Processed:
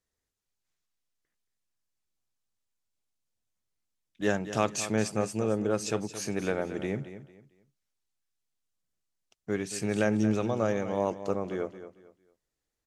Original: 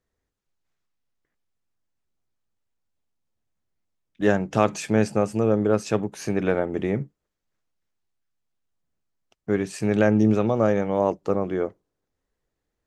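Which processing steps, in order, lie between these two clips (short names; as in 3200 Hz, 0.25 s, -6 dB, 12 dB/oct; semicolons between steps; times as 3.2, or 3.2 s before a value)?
bell 7800 Hz +10 dB 2.8 oct; feedback echo 0.225 s, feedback 28%, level -12.5 dB; gain -7.5 dB; MP3 80 kbps 48000 Hz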